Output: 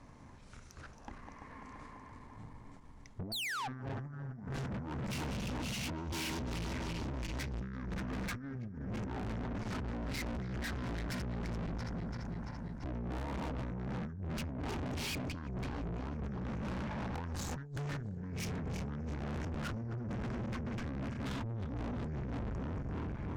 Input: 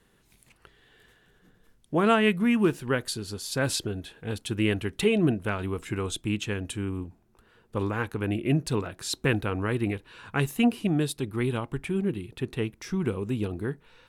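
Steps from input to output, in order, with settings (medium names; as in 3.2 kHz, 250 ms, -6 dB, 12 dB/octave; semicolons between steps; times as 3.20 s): backward echo that repeats 102 ms, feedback 77%, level -9.5 dB; treble shelf 2.9 kHz -11 dB; compressor with a negative ratio -32 dBFS, ratio -0.5; painted sound fall, 2.00–2.22 s, 1.2–7.9 kHz -33 dBFS; wide varispeed 0.603×; valve stage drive 44 dB, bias 0.45; trim +7 dB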